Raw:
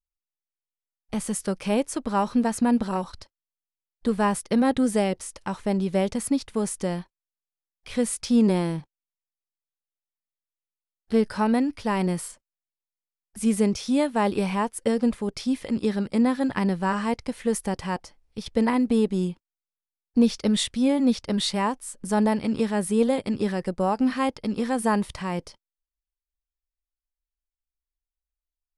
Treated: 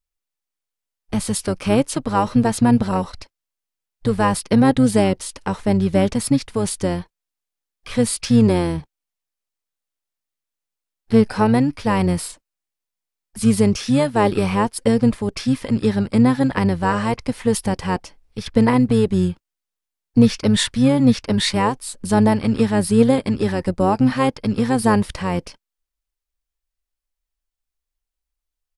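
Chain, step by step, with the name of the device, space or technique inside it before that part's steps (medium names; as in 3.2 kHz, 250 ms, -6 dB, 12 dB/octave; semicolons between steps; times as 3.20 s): octave pedal (harmony voices -12 st -7 dB); trim +5.5 dB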